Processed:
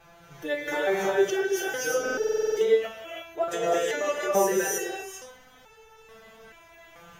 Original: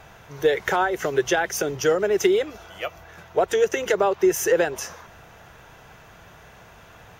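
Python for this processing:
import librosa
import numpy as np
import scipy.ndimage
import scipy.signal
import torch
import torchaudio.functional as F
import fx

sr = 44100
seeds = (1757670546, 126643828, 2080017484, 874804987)

y = fx.rev_gated(x, sr, seeds[0], gate_ms=370, shape='rising', drr_db=-2.5)
y = fx.buffer_glitch(y, sr, at_s=(2.01,), block=2048, repeats=11)
y = fx.resonator_held(y, sr, hz=2.3, low_hz=170.0, high_hz=440.0)
y = y * 10.0 ** (6.0 / 20.0)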